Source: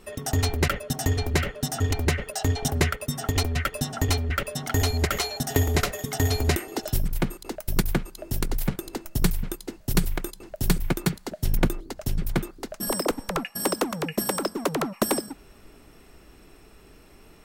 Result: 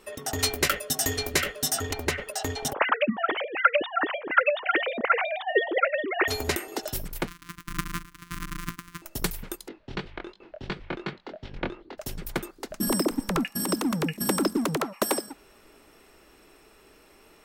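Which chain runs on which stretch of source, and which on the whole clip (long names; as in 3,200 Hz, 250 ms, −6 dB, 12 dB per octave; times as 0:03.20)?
0:00.39–0:01.81: high-shelf EQ 3,600 Hz +8.5 dB + notch filter 880 Hz, Q 9.1 + double-tracking delay 19 ms −10.5 dB
0:02.73–0:06.28: three sine waves on the formant tracks + low-shelf EQ 210 Hz +5.5 dB
0:07.27–0:09.02: samples sorted by size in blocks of 256 samples + linear-phase brick-wall band-stop 330–1,000 Hz + dynamic equaliser 3,900 Hz, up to −6 dB, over −51 dBFS, Q 0.95
0:09.68–0:11.98: low-pass filter 3,700 Hz 24 dB per octave + chorus effect 2.8 Hz, delay 20 ms, depth 4.7 ms
0:12.70–0:14.80: low shelf with overshoot 370 Hz +11 dB, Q 1.5 + compressor whose output falls as the input rises −19 dBFS, ratio −0.5 + delay with a high-pass on its return 116 ms, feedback 50%, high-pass 5,600 Hz, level −15.5 dB
whole clip: bass and treble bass −12 dB, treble −1 dB; notch filter 710 Hz, Q 21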